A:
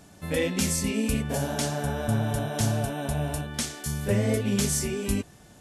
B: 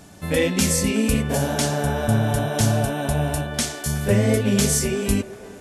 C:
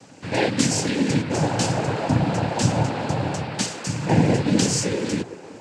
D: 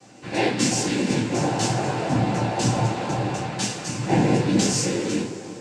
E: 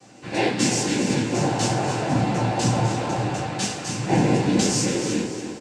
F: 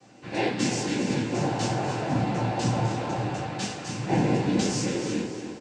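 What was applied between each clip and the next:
feedback echo behind a band-pass 372 ms, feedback 51%, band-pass 780 Hz, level -10 dB; trim +6 dB
noise-vocoded speech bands 8
two-slope reverb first 0.29 s, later 3.4 s, from -21 dB, DRR -5 dB; trim -6.5 dB
feedback delay 283 ms, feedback 33%, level -9.5 dB
distance through air 59 m; trim -4 dB

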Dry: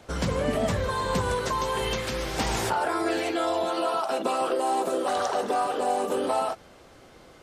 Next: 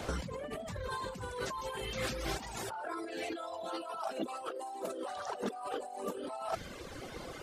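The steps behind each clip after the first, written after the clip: compressor with a negative ratio -37 dBFS, ratio -1; reverb removal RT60 1.7 s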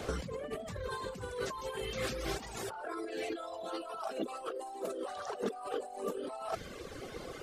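peaking EQ 990 Hz -5.5 dB 0.34 oct; small resonant body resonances 430/1100 Hz, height 6 dB, ringing for 25 ms; added noise brown -76 dBFS; trim -1 dB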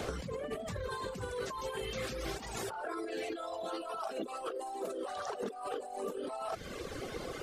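compression, threshold -39 dBFS, peak gain reduction 9.5 dB; trim +4 dB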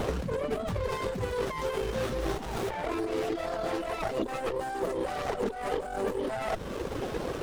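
sliding maximum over 17 samples; trim +8.5 dB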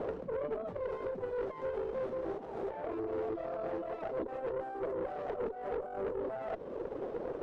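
band-pass filter 480 Hz, Q 1.6; valve stage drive 30 dB, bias 0.4

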